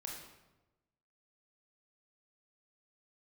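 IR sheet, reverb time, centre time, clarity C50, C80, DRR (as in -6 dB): 1.1 s, 53 ms, 2.0 dB, 5.0 dB, -1.5 dB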